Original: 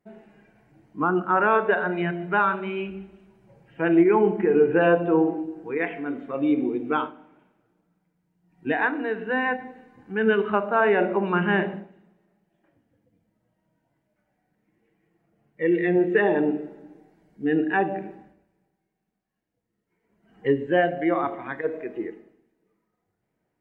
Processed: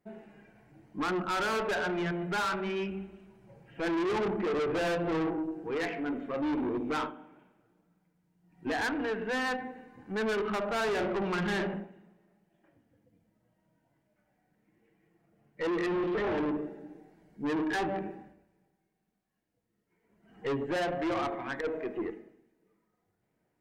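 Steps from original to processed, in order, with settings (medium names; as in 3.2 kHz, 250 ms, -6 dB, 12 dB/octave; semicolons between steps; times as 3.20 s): 15.86–16.38 s: one-bit delta coder 16 kbps, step -33.5 dBFS; valve stage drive 28 dB, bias 0.25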